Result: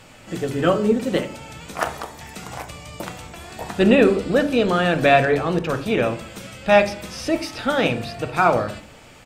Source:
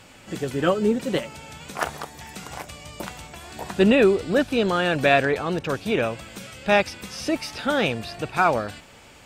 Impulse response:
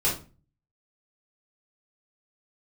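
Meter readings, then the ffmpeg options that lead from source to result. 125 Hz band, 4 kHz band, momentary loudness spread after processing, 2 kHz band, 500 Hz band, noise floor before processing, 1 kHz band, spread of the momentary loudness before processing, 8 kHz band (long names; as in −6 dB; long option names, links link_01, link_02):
+4.0 dB, +1.0 dB, 19 LU, +1.5 dB, +3.0 dB, −48 dBFS, +3.5 dB, 18 LU, +1.0 dB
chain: -filter_complex "[0:a]aecho=1:1:73|146|219|292:0.0708|0.0418|0.0246|0.0145,asplit=2[link_01][link_02];[1:a]atrim=start_sample=2205,asetrate=38367,aresample=44100,lowpass=2500[link_03];[link_02][link_03]afir=irnorm=-1:irlink=0,volume=-17dB[link_04];[link_01][link_04]amix=inputs=2:normalize=0,volume=1dB"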